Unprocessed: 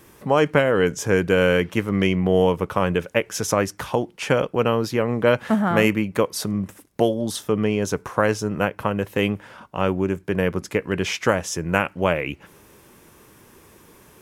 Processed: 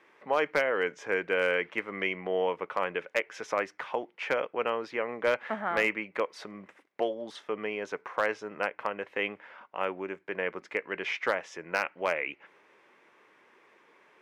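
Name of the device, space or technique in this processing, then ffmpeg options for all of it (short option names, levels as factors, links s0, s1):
megaphone: -af "highpass=480,lowpass=2800,equalizer=f=2100:t=o:w=0.5:g=7,asoftclip=type=hard:threshold=0.335,volume=0.447"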